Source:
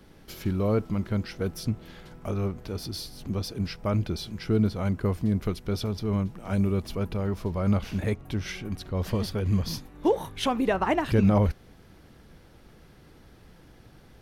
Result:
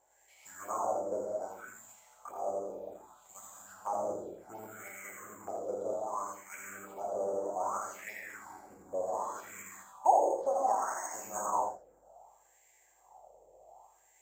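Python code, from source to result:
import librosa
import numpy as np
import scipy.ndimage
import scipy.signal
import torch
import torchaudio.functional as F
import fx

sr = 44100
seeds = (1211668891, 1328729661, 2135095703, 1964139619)

y = fx.spec_clip(x, sr, under_db=12)
y = fx.add_hum(y, sr, base_hz=50, snr_db=15)
y = fx.peak_eq(y, sr, hz=760.0, db=13.0, octaves=1.0)
y = fx.rev_gated(y, sr, seeds[0], gate_ms=250, shape='flat', drr_db=-3.0)
y = fx.env_lowpass_down(y, sr, base_hz=1200.0, full_db=-9.5)
y = (np.kron(scipy.signal.resample_poly(y, 1, 6), np.eye(6)[0]) * 6)[:len(y)]
y = fx.wah_lfo(y, sr, hz=0.65, low_hz=500.0, high_hz=2100.0, q=5.4)
y = fx.env_phaser(y, sr, low_hz=200.0, high_hz=2600.0, full_db=-28.0)
y = y + 10.0 ** (-7.0 / 20.0) * np.pad(y, (int(82 * sr / 1000.0), 0))[:len(y)]
y = y * 10.0 ** (-6.5 / 20.0)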